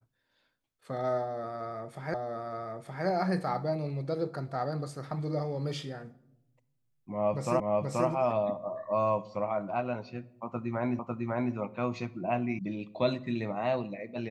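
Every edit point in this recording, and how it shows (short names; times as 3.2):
2.14 repeat of the last 0.92 s
7.6 repeat of the last 0.48 s
10.99 repeat of the last 0.55 s
12.59 sound cut off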